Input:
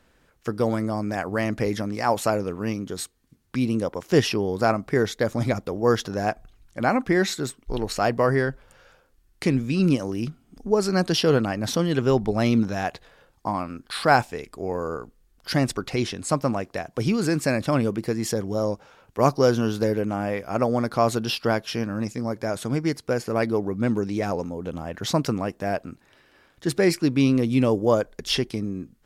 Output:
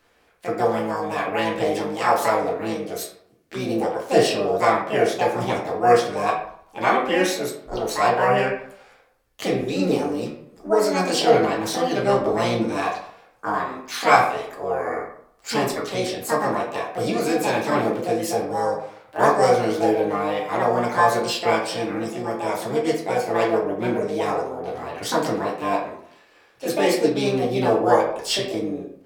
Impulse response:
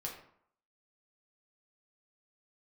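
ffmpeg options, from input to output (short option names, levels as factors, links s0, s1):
-filter_complex "[0:a]asplit=2[s0][s1];[s1]asetrate=66075,aresample=44100,atempo=0.66742,volume=0.794[s2];[s0][s2]amix=inputs=2:normalize=0,bass=f=250:g=-11,treble=f=4000:g=-1[s3];[1:a]atrim=start_sample=2205,asetrate=42777,aresample=44100[s4];[s3][s4]afir=irnorm=-1:irlink=0,volume=1.19"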